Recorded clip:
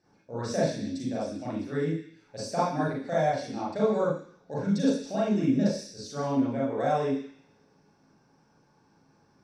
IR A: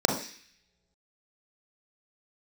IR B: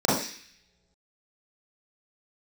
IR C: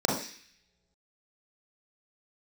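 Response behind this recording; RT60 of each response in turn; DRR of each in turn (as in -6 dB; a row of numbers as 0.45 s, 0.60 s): B; no single decay rate, no single decay rate, no single decay rate; 2.0 dB, -8.5 dB, -2.5 dB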